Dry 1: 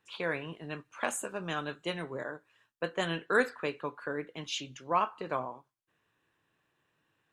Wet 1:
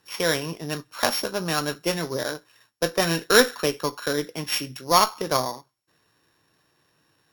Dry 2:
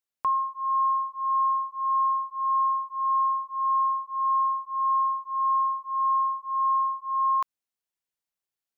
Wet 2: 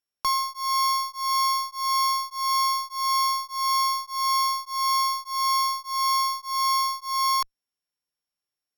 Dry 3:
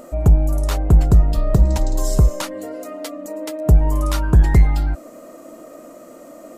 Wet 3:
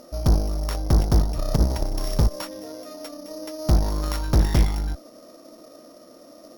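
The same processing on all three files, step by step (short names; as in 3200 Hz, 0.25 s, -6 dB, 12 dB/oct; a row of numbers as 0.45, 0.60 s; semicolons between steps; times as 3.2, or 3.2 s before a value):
sample sorter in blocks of 8 samples; added harmonics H 2 -12 dB, 4 -28 dB, 6 -10 dB, 8 -12 dB, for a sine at -4 dBFS; match loudness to -24 LUFS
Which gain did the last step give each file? +10.0, +0.5, -7.0 dB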